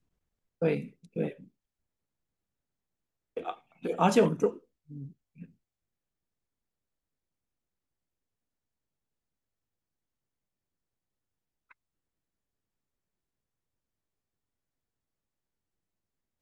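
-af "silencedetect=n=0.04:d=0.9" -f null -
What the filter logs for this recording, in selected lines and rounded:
silence_start: 1.28
silence_end: 3.37 | silence_duration: 2.09
silence_start: 4.49
silence_end: 16.41 | silence_duration: 11.92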